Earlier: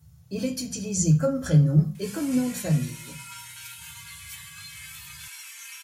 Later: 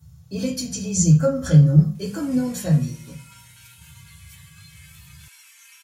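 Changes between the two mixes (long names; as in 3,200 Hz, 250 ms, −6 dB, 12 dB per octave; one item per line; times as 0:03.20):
speech: send +6.0 dB
background −7.5 dB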